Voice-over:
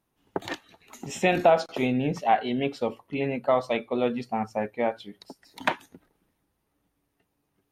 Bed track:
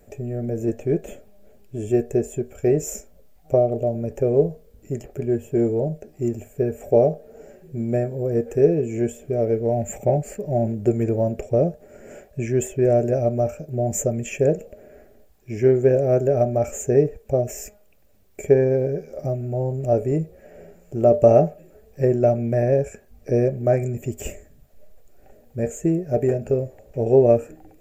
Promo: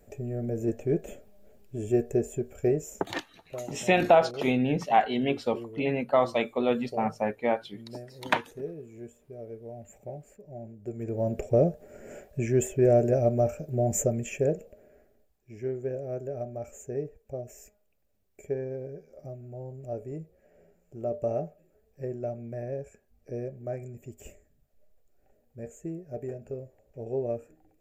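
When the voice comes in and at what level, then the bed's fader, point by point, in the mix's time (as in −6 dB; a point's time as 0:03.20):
2.65 s, 0.0 dB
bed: 0:02.66 −5 dB
0:03.13 −20.5 dB
0:10.79 −20.5 dB
0:11.36 −3 dB
0:14.01 −3 dB
0:15.42 −16 dB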